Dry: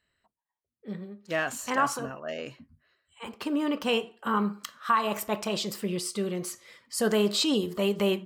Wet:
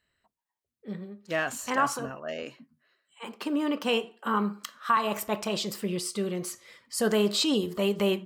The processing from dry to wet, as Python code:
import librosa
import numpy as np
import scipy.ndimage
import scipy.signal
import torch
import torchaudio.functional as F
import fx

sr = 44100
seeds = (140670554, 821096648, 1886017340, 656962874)

y = fx.highpass(x, sr, hz=170.0, slope=24, at=(2.43, 4.97))